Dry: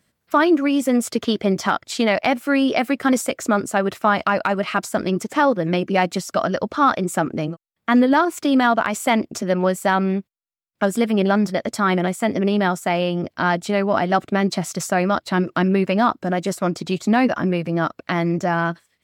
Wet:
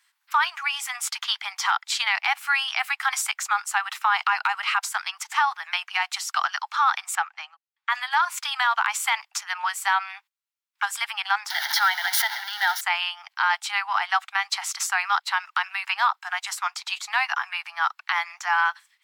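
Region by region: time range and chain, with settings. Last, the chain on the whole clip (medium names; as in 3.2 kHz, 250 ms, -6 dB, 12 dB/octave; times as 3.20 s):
7.15–7.90 s: low-pass 5.4 kHz + upward expansion, over -28 dBFS
11.50–12.81 s: jump at every zero crossing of -21 dBFS + static phaser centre 1.7 kHz, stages 8 + swell ahead of each attack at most 34 dB/s
whole clip: steep high-pass 800 Hz 96 dB/octave; peaking EQ 2.6 kHz +4.5 dB 2.4 oct; peak limiter -11.5 dBFS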